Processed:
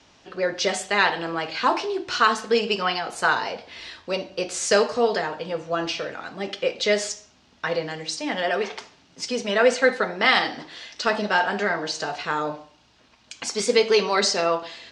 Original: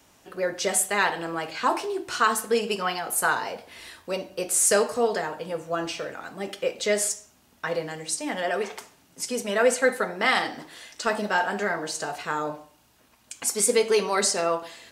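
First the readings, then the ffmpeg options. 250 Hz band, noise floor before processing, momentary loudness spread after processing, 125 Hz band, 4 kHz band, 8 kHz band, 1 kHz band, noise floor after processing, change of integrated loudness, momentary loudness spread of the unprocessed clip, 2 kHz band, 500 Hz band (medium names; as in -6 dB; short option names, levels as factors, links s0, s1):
+2.5 dB, -60 dBFS, 13 LU, +2.5 dB, +6.0 dB, -6.0 dB, +2.5 dB, -58 dBFS, +2.0 dB, 13 LU, +3.5 dB, +2.5 dB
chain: -filter_complex "[0:a]lowpass=f=5300:w=0.5412,lowpass=f=5300:w=1.3066,acrossover=split=2700[s0][s1];[s1]acontrast=27[s2];[s0][s2]amix=inputs=2:normalize=0,volume=1.33"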